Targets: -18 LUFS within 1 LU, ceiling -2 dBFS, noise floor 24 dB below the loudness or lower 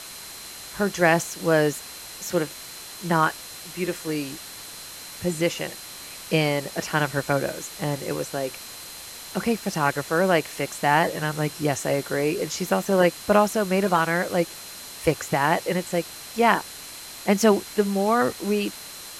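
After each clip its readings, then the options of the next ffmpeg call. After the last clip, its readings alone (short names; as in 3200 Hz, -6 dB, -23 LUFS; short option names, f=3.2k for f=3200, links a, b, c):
steady tone 4100 Hz; tone level -45 dBFS; noise floor -40 dBFS; noise floor target -48 dBFS; loudness -24.0 LUFS; peak -4.0 dBFS; loudness target -18.0 LUFS
-> -af "bandreject=f=4.1k:w=30"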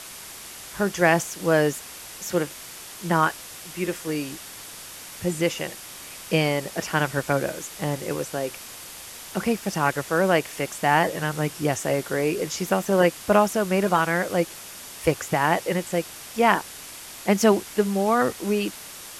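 steady tone none; noise floor -41 dBFS; noise floor target -48 dBFS
-> -af "afftdn=nr=7:nf=-41"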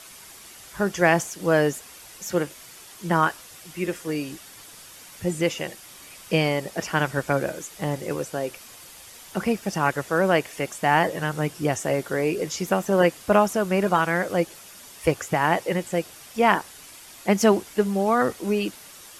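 noise floor -46 dBFS; noise floor target -48 dBFS
-> -af "afftdn=nr=6:nf=-46"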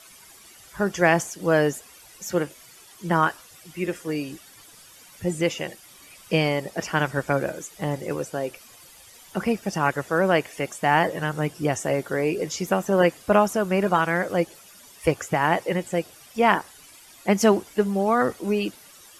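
noise floor -49 dBFS; loudness -24.0 LUFS; peak -4.0 dBFS; loudness target -18.0 LUFS
-> -af "volume=6dB,alimiter=limit=-2dB:level=0:latency=1"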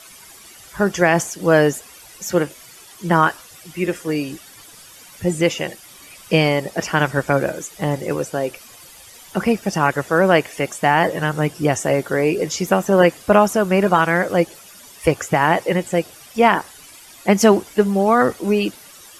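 loudness -18.5 LUFS; peak -2.0 dBFS; noise floor -43 dBFS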